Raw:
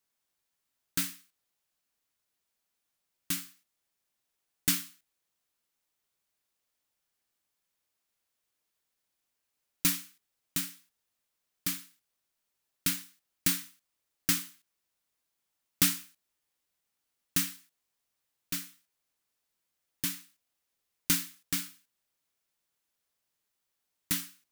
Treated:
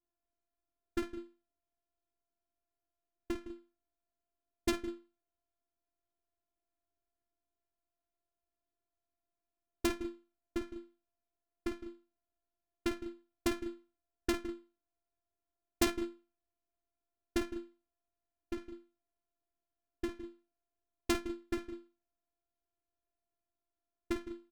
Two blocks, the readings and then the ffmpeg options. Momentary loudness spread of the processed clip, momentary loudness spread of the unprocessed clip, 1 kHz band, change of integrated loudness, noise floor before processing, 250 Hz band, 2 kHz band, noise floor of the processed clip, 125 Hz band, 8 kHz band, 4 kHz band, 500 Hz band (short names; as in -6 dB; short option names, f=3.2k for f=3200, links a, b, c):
15 LU, 11 LU, +3.5 dB, -8.0 dB, -83 dBFS, +2.5 dB, -5.0 dB, under -85 dBFS, -8.0 dB, -15.5 dB, -10.0 dB, +18.0 dB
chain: -af "afftfilt=real='hypot(re,im)*cos(PI*b)':imag='0':win_size=512:overlap=0.75,aecho=1:1:51|161|199:0.531|0.299|0.224,adynamicsmooth=sensitivity=2:basefreq=540,volume=10dB"